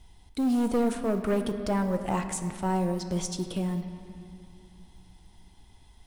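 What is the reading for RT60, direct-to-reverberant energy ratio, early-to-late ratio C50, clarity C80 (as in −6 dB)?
2.6 s, 7.0 dB, 8.5 dB, 9.5 dB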